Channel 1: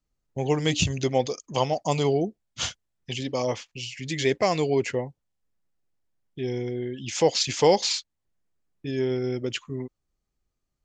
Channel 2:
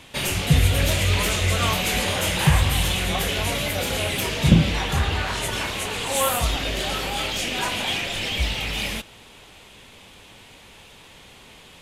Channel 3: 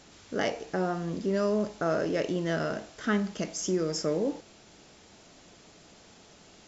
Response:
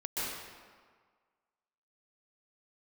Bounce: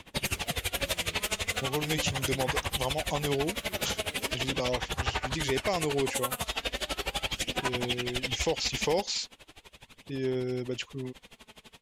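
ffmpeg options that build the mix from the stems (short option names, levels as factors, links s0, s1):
-filter_complex "[0:a]adelay=1250,volume=0.596[s0];[1:a]acrossover=split=410|3000[s1][s2][s3];[s1]acompressor=threshold=0.0282:ratio=6[s4];[s4][s2][s3]amix=inputs=3:normalize=0,aphaser=in_gain=1:out_gain=1:delay=4.7:decay=0.4:speed=0.39:type=sinusoidal,aeval=exprs='val(0)*pow(10,-24*(0.5-0.5*cos(2*PI*12*n/s))/20)':c=same,volume=0.841[s5];[2:a]alimiter=level_in=1.26:limit=0.0631:level=0:latency=1,volume=0.794,acrusher=samples=42:mix=1:aa=0.000001:lfo=1:lforange=67.2:lforate=1.6,volume=0.168[s6];[s0][s5][s6]amix=inputs=3:normalize=0,alimiter=limit=0.141:level=0:latency=1:release=253"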